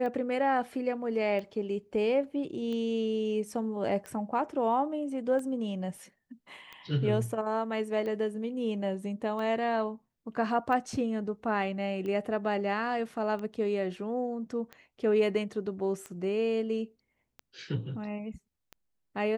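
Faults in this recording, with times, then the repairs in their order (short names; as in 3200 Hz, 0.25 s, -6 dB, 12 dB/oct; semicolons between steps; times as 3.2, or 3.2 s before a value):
tick 45 rpm -27 dBFS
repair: de-click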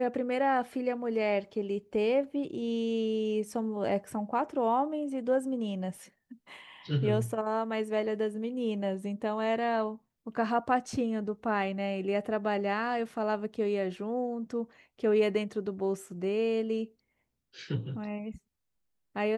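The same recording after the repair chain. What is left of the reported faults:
none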